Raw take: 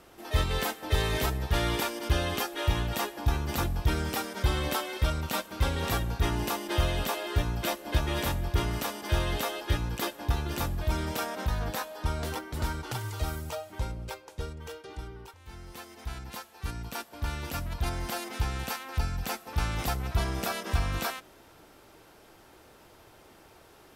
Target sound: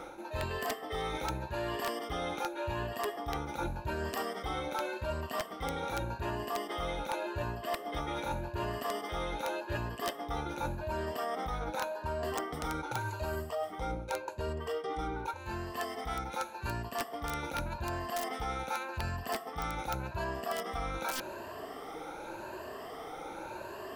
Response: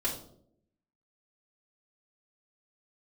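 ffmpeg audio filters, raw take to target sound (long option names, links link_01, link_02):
-af "afftfilt=real='re*pow(10,14/40*sin(2*PI*(1.4*log(max(b,1)*sr/1024/100)/log(2)-(0.86)*(pts-256)/sr)))':imag='im*pow(10,14/40*sin(2*PI*(1.4*log(max(b,1)*sr/1024/100)/log(2)-(0.86)*(pts-256)/sr)))':win_size=1024:overlap=0.75,equalizer=frequency=720:width=0.34:gain=13,areverse,acompressor=threshold=-32dB:ratio=20,areverse,aeval=exprs='(mod(15.8*val(0)+1,2)-1)/15.8':channel_layout=same"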